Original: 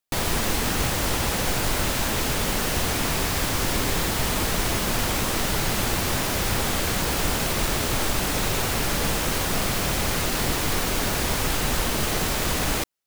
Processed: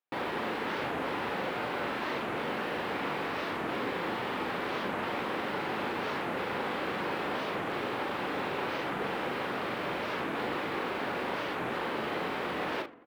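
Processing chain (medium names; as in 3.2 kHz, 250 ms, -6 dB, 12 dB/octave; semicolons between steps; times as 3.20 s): in parallel at -3 dB: saturation -27 dBFS, distortion -9 dB; on the sum: doubling 40 ms -5 dB; filtered feedback delay 76 ms, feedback 25%, low-pass 3.4 kHz, level -15 dB; reverse; upward compressor, threshold -38 dBFS; reverse; high-pass 310 Hz 12 dB/octave; distance through air 490 m; band-stop 650 Hz, Q 12; warped record 45 rpm, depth 250 cents; trim -5.5 dB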